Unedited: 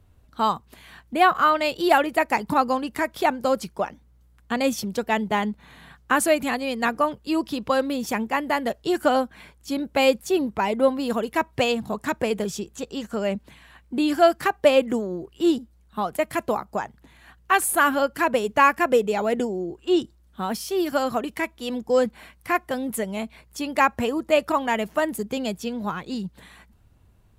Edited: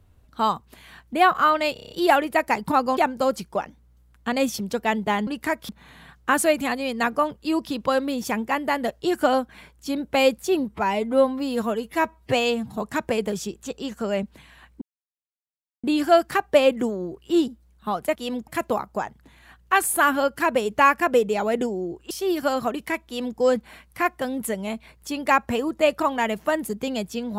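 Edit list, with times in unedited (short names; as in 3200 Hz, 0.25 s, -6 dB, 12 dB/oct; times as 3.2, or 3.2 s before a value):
1.73 stutter 0.03 s, 7 plays
2.79–3.21 move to 5.51
10.51–11.9 stretch 1.5×
13.94 insert silence 1.02 s
19.89–20.6 cut
21.56–21.88 copy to 16.26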